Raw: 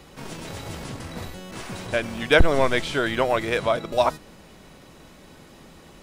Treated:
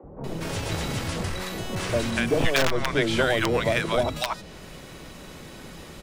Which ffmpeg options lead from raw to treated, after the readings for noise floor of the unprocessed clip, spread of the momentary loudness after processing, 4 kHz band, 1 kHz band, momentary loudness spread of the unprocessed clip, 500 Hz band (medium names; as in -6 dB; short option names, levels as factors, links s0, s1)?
-49 dBFS, 20 LU, +1.5 dB, -3.0 dB, 18 LU, -2.0 dB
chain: -filter_complex "[0:a]aeval=exprs='(mod(2.51*val(0)+1,2)-1)/2.51':c=same,acrossover=split=390|2300|6800[s0][s1][s2][s3];[s0]acompressor=threshold=0.0355:ratio=4[s4];[s1]acompressor=threshold=0.0316:ratio=4[s5];[s2]acompressor=threshold=0.0126:ratio=4[s6];[s3]acompressor=threshold=0.00316:ratio=4[s7];[s4][s5][s6][s7]amix=inputs=4:normalize=0,acrossover=split=250|840[s8][s9][s10];[s8]adelay=30[s11];[s10]adelay=240[s12];[s11][s9][s12]amix=inputs=3:normalize=0,volume=2.24"